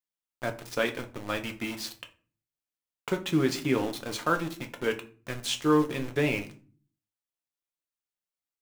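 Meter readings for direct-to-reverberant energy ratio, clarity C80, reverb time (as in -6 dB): 4.5 dB, 20.0 dB, 0.40 s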